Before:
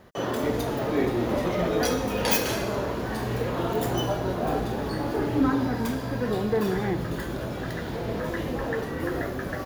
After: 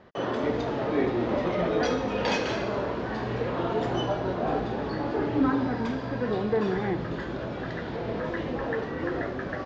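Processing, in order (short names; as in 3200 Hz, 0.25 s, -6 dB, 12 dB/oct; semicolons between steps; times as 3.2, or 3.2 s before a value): Bessel low-pass 3500 Hz, order 8; low shelf 120 Hz -7 dB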